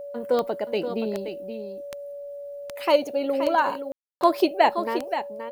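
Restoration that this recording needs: de-click; notch 570 Hz, Q 30; room tone fill 3.92–4.21; inverse comb 0.525 s -9 dB

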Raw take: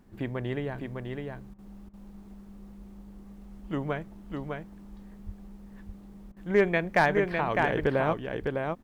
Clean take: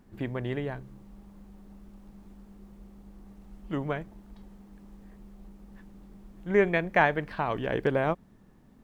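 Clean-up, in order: clip repair -13 dBFS; 5.25–5.37 HPF 140 Hz 24 dB/oct; 7.8–7.92 HPF 140 Hz 24 dB/oct; interpolate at 1.54/1.89/6.32, 44 ms; inverse comb 0.605 s -4.5 dB

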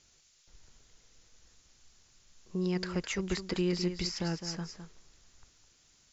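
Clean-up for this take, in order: noise print and reduce 15 dB; inverse comb 0.209 s -9.5 dB

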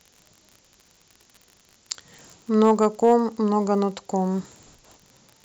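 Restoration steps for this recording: clip repair -8.5 dBFS; de-click; interpolate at 2.18, 2.5 ms; denoiser 7 dB, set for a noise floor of -60 dBFS

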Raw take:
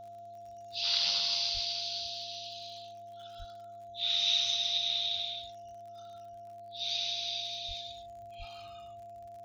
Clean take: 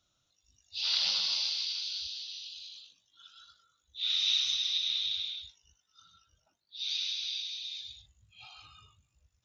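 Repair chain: de-click; de-hum 105.8 Hz, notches 6; notch 690 Hz, Q 30; de-plosive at 1.53/3.38/7.67/8.38

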